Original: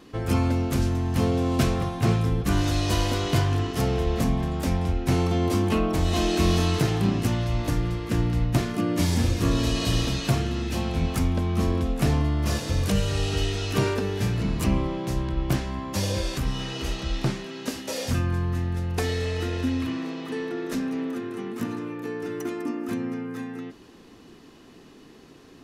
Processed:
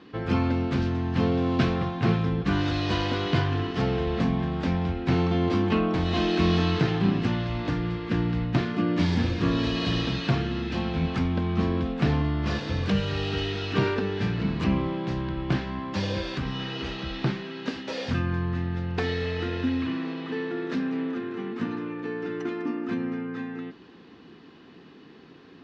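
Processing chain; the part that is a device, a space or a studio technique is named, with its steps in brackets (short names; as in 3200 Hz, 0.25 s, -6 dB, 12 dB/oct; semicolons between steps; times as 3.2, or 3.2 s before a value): guitar cabinet (speaker cabinet 86–4300 Hz, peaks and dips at 110 Hz -4 dB, 170 Hz +3 dB, 610 Hz -4 dB, 1600 Hz +3 dB)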